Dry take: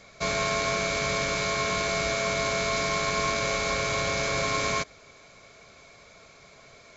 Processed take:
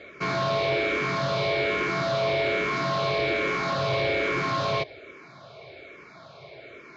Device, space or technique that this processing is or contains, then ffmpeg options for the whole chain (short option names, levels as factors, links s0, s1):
barber-pole phaser into a guitar amplifier: -filter_complex "[0:a]asplit=2[s0][s1];[s1]afreqshift=-1.2[s2];[s0][s2]amix=inputs=2:normalize=1,asoftclip=type=tanh:threshold=0.0282,highpass=99,equalizer=f=130:t=q:w=4:g=7,equalizer=f=210:t=q:w=4:g=-4,equalizer=f=350:t=q:w=4:g=10,equalizer=f=610:t=q:w=4:g=4,lowpass=f=4100:w=0.5412,lowpass=f=4100:w=1.3066,volume=2.51"